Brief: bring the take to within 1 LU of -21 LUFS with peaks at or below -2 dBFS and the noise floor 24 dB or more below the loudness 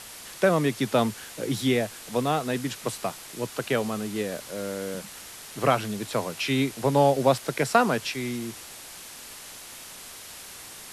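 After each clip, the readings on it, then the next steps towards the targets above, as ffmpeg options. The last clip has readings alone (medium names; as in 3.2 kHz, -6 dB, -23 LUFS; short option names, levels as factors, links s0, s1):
noise floor -43 dBFS; noise floor target -51 dBFS; loudness -26.5 LUFS; peak level -5.5 dBFS; loudness target -21.0 LUFS
-> -af "afftdn=nr=8:nf=-43"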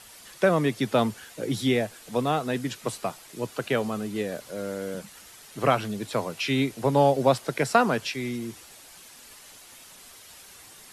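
noise floor -49 dBFS; noise floor target -51 dBFS
-> -af "afftdn=nr=6:nf=-49"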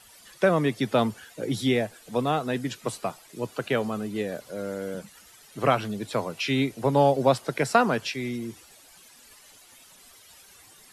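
noise floor -53 dBFS; loudness -26.5 LUFS; peak level -5.5 dBFS; loudness target -21.0 LUFS
-> -af "volume=1.88,alimiter=limit=0.794:level=0:latency=1"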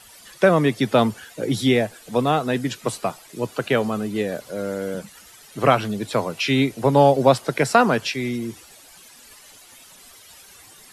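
loudness -21.0 LUFS; peak level -2.0 dBFS; noise floor -48 dBFS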